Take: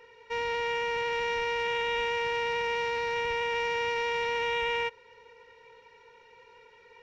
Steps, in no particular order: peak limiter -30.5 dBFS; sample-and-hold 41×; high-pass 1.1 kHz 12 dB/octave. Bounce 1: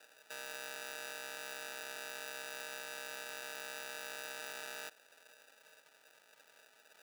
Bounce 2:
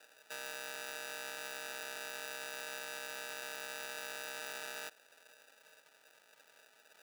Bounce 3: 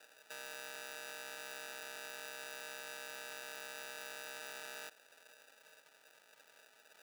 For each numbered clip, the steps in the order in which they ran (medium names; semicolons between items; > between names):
peak limiter > sample-and-hold > high-pass; sample-and-hold > peak limiter > high-pass; sample-and-hold > high-pass > peak limiter